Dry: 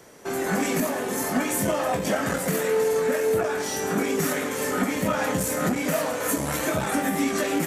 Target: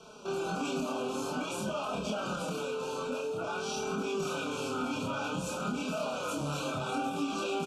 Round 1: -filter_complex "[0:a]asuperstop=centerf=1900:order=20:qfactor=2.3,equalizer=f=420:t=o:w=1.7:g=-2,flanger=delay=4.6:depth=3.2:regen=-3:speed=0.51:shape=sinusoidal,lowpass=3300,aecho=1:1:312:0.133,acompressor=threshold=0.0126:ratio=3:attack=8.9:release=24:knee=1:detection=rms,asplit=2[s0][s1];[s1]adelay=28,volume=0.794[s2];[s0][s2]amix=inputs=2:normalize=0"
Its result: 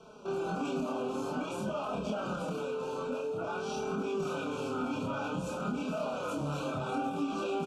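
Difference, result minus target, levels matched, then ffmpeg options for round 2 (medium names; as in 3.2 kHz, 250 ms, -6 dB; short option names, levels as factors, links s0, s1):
4 kHz band -5.5 dB
-filter_complex "[0:a]asuperstop=centerf=1900:order=20:qfactor=2.3,equalizer=f=420:t=o:w=1.7:g=-2,flanger=delay=4.6:depth=3.2:regen=-3:speed=0.51:shape=sinusoidal,lowpass=3300,highshelf=f=2100:g=10,aecho=1:1:312:0.133,acompressor=threshold=0.0126:ratio=3:attack=8.9:release=24:knee=1:detection=rms,asplit=2[s0][s1];[s1]adelay=28,volume=0.794[s2];[s0][s2]amix=inputs=2:normalize=0"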